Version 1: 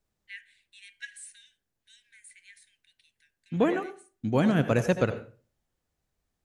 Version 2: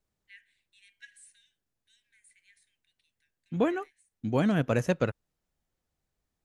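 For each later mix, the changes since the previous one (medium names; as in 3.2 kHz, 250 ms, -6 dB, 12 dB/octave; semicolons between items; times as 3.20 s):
first voice -9.5 dB; reverb: off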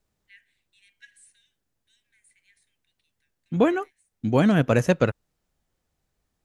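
second voice +6.5 dB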